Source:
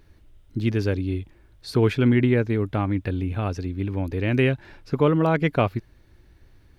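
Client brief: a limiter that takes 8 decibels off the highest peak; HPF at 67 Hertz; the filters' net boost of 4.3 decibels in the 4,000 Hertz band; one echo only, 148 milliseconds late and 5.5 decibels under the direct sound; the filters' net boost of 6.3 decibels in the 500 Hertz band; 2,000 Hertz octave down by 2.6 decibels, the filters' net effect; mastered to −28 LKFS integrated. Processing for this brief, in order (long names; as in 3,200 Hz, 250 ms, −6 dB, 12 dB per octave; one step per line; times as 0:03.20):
high-pass filter 67 Hz
parametric band 500 Hz +8 dB
parametric band 2,000 Hz −6 dB
parametric band 4,000 Hz +8 dB
brickwall limiter −10 dBFS
single-tap delay 148 ms −5.5 dB
level −6.5 dB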